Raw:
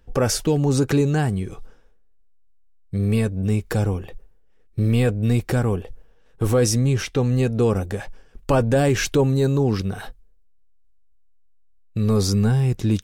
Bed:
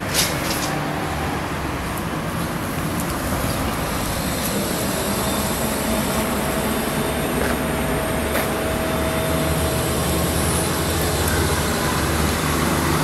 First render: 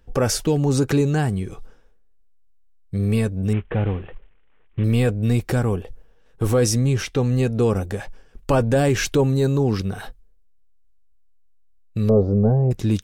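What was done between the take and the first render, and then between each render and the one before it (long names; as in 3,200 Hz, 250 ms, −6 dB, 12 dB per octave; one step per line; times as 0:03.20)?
0:03.53–0:04.84: variable-slope delta modulation 16 kbit/s
0:12.09–0:12.71: low-pass with resonance 600 Hz, resonance Q 4.7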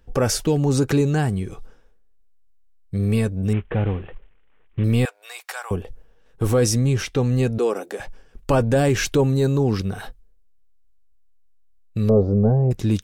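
0:05.05–0:05.71: inverse Chebyshev high-pass filter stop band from 240 Hz, stop band 60 dB
0:07.58–0:08.00: high-pass filter 300 Hz 24 dB per octave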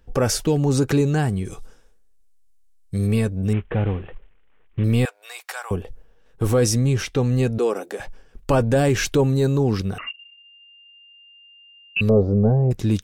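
0:01.45–0:03.07: parametric band 8,700 Hz +12 dB 1.8 octaves
0:09.98–0:12.01: voice inversion scrambler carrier 2,800 Hz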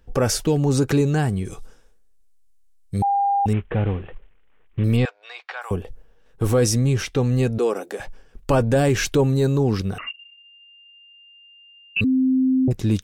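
0:03.02–0:03.46: beep over 801 Hz −16.5 dBFS
0:04.96–0:05.61: low-pass filter 6,000 Hz → 3,500 Hz 24 dB per octave
0:12.04–0:12.68: beep over 260 Hz −15 dBFS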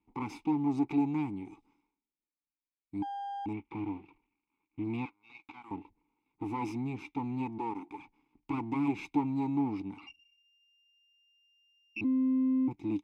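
lower of the sound and its delayed copy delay 0.8 ms
formant filter u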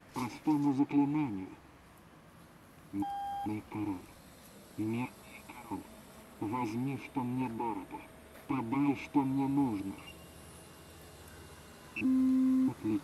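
mix in bed −32.5 dB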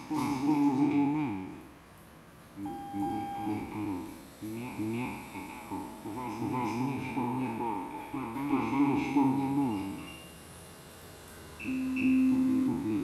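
peak hold with a decay on every bin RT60 1.07 s
on a send: backwards echo 366 ms −5 dB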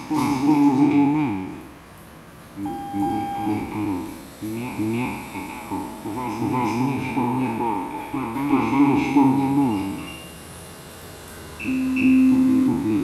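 level +10 dB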